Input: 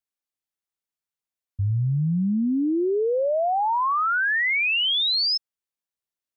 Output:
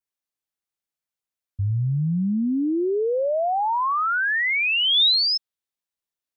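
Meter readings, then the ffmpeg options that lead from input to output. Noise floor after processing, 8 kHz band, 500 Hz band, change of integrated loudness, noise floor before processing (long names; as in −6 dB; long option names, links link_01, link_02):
below −85 dBFS, can't be measured, 0.0 dB, +1.0 dB, below −85 dBFS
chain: -af "adynamicequalizer=threshold=0.01:dfrequency=3700:dqfactor=3.7:tfrequency=3700:tqfactor=3.7:attack=5:release=100:ratio=0.375:range=3:mode=boostabove:tftype=bell"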